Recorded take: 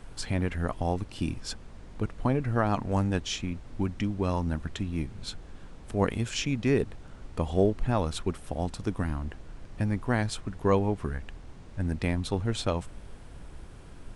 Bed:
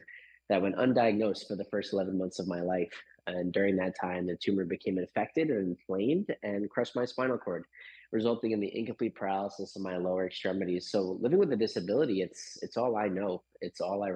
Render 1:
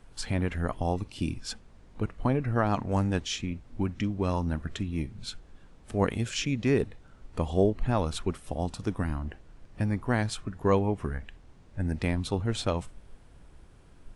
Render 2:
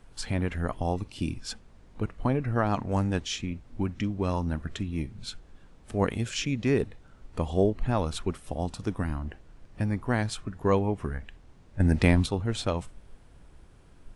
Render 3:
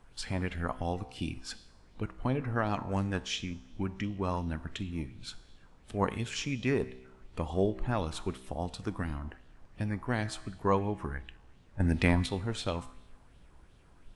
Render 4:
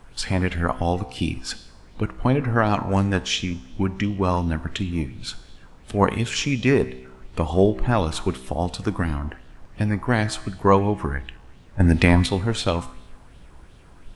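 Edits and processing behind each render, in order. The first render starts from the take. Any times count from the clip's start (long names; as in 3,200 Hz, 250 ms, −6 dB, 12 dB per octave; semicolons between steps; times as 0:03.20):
noise reduction from a noise print 8 dB
0:11.80–0:12.26: clip gain +7.5 dB
tuned comb filter 64 Hz, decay 0.99 s, harmonics all, mix 50%; auto-filter bell 2.8 Hz 890–3,700 Hz +8 dB
level +11 dB; brickwall limiter −1 dBFS, peak gain reduction 3 dB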